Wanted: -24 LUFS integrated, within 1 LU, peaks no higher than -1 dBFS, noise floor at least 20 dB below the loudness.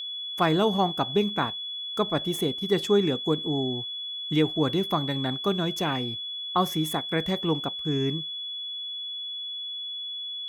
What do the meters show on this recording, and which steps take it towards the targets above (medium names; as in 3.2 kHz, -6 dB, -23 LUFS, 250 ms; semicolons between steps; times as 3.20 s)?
steady tone 3.4 kHz; tone level -32 dBFS; loudness -27.0 LUFS; peak level -11.0 dBFS; loudness target -24.0 LUFS
-> band-stop 3.4 kHz, Q 30; trim +3 dB